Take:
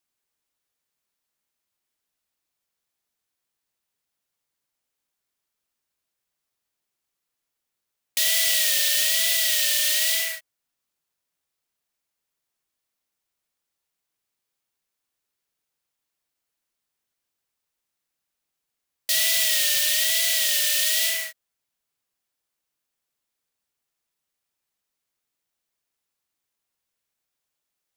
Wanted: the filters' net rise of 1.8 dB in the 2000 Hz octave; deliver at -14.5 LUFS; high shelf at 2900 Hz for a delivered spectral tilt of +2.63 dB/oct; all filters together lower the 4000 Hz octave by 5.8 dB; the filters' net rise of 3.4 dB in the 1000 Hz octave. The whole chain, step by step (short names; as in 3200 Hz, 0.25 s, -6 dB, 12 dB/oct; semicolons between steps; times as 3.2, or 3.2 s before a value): bell 1000 Hz +4.5 dB; bell 2000 Hz +4.5 dB; high shelf 2900 Hz -7.5 dB; bell 4000 Hz -3.5 dB; gain +9.5 dB